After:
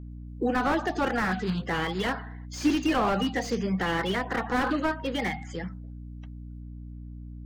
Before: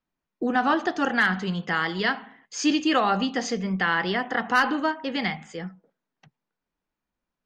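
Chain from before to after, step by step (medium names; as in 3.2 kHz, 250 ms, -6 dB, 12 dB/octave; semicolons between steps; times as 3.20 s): coarse spectral quantiser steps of 30 dB; hum 60 Hz, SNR 13 dB; slew-rate limiter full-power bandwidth 71 Hz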